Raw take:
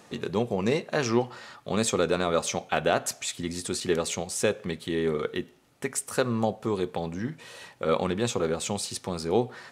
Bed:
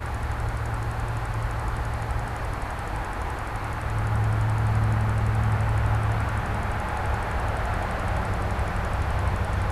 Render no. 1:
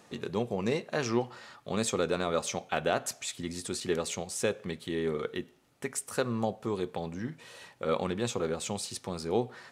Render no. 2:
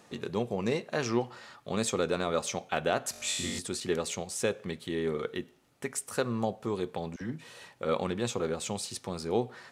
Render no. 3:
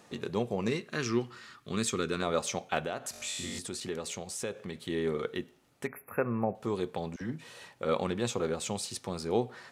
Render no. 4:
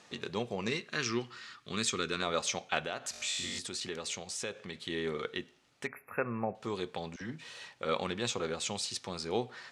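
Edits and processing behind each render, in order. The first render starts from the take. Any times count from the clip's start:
gain -4.5 dB
3.11–3.59 flutter echo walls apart 3.7 m, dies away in 1.2 s; 7.16–7.6 dispersion lows, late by 50 ms, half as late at 710 Hz
0.68–2.22 band shelf 680 Hz -11.5 dB 1.1 oct; 2.8–4.75 compressor 2:1, threshold -36 dBFS; 5.87–6.55 brick-wall FIR band-stop 2700–11000 Hz
LPF 6100 Hz 12 dB/oct; tilt shelf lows -5.5 dB, about 1300 Hz

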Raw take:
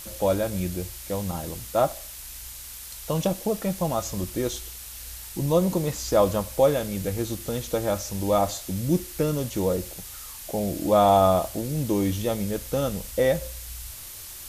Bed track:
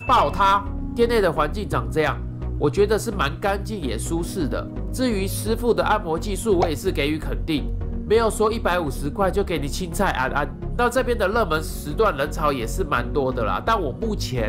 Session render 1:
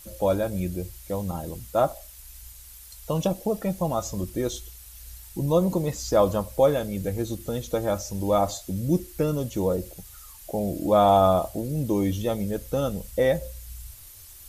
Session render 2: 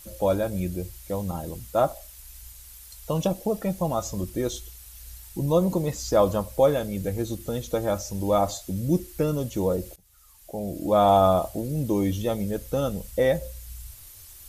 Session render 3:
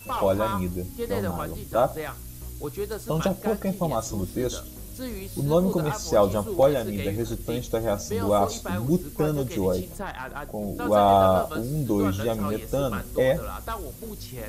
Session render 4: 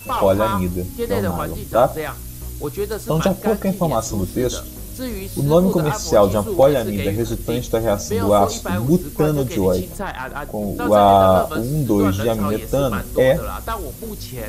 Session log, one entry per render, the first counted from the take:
denoiser 10 dB, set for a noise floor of -40 dBFS
9.96–11.11 fade in, from -21.5 dB
add bed track -13 dB
gain +7 dB; limiter -3 dBFS, peak gain reduction 2 dB

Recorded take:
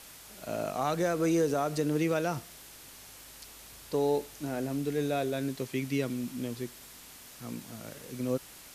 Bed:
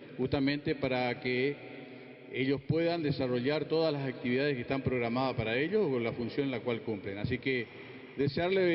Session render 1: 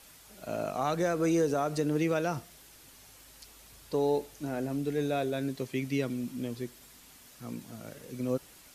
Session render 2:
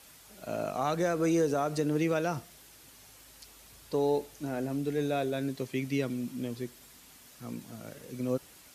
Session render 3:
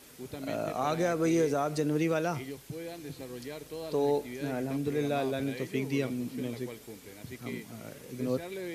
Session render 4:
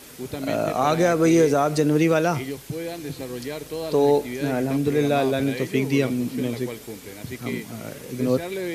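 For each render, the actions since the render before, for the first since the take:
denoiser 6 dB, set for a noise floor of -51 dBFS
HPF 45 Hz
add bed -11 dB
gain +9.5 dB

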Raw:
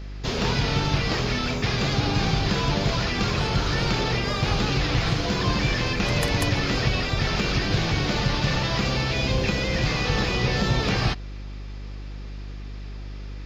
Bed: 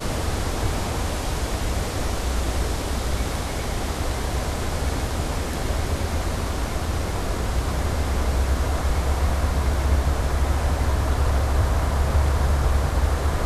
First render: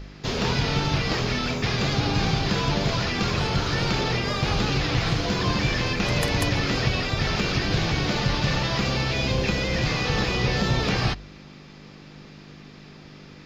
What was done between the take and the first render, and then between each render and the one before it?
de-hum 50 Hz, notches 2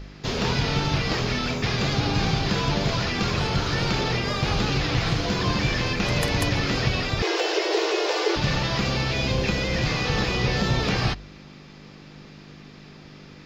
7.22–8.36 frequency shift +300 Hz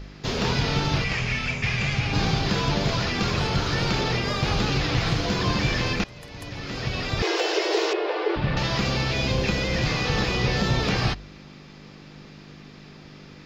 1.04–2.13 EQ curve 130 Hz 0 dB, 200 Hz -4 dB, 300 Hz -11 dB, 600 Hz -6 dB, 1400 Hz -4 dB, 2400 Hz +7 dB, 3900 Hz -7 dB, 9100 Hz +1 dB, 15000 Hz -24 dB; 6.04–7.21 fade in quadratic, from -20.5 dB; 7.93–8.57 air absorption 370 m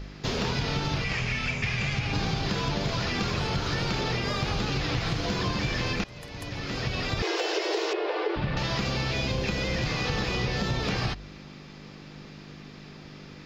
compressor 4:1, threshold -25 dBFS, peak gain reduction 6.5 dB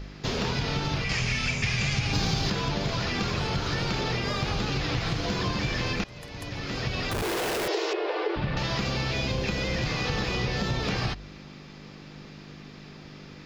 1.09–2.5 tone controls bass +2 dB, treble +9 dB; 7.11–7.68 Schmitt trigger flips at -33 dBFS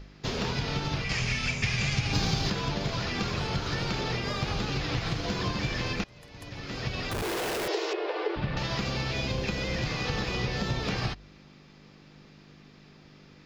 upward expander 1.5:1, over -40 dBFS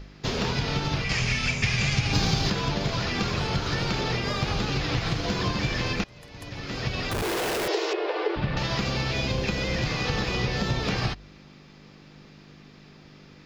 gain +3.5 dB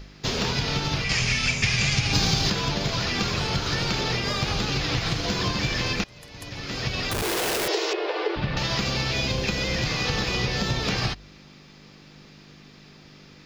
high shelf 3100 Hz +7 dB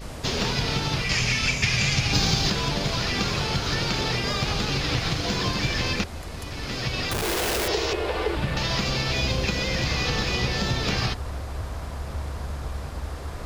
add bed -11.5 dB

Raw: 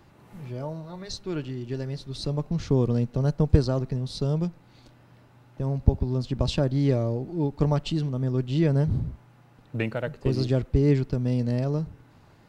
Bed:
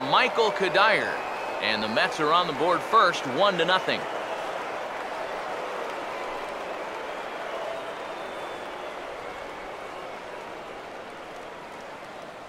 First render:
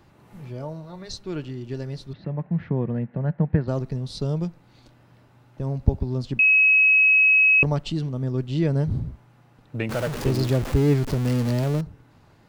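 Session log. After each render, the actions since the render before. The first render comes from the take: 2.13–3.68 speaker cabinet 130–2300 Hz, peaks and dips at 180 Hz +7 dB, 280 Hz -5 dB, 430 Hz -6 dB, 1200 Hz -5 dB, 1800 Hz +8 dB; 6.39–7.63 bleep 2560 Hz -13 dBFS; 9.89–11.81 zero-crossing step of -26 dBFS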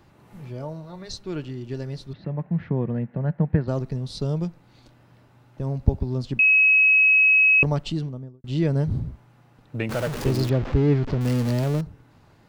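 7.89–8.44 studio fade out; 10.49–11.21 air absorption 190 m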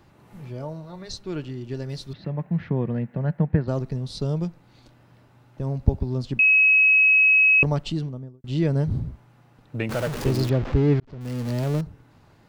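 1.89–3.45 high shelf 2800 Hz +8 dB; 11–11.77 fade in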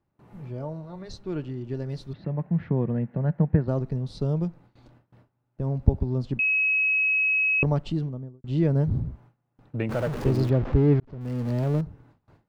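gate with hold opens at -44 dBFS; high shelf 2300 Hz -12 dB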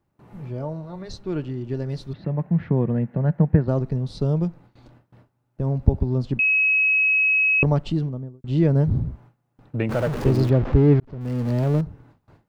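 gain +4 dB; limiter -3 dBFS, peak gain reduction 2 dB

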